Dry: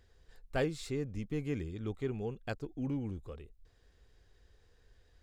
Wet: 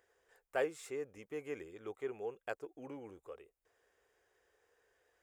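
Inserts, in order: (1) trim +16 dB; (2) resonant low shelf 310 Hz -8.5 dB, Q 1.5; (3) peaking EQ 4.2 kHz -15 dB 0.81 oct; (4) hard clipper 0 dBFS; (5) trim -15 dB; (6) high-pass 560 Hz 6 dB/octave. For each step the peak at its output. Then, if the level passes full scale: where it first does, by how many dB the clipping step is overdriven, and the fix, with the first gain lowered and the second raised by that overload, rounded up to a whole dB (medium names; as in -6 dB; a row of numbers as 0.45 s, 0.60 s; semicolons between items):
-4.5 dBFS, -4.0 dBFS, -5.0 dBFS, -5.0 dBFS, -20.0 dBFS, -22.5 dBFS; nothing clips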